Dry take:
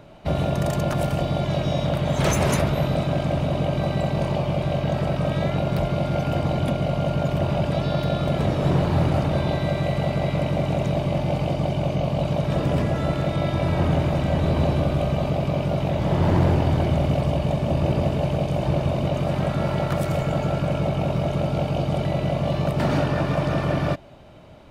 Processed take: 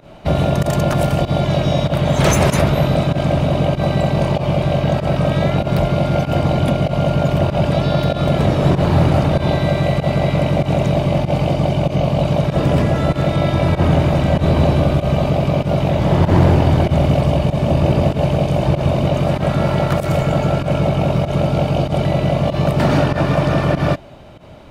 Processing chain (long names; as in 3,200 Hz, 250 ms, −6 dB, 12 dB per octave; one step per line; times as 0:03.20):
fake sidechain pumping 96 BPM, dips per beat 1, −17 dB, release 87 ms
level +7 dB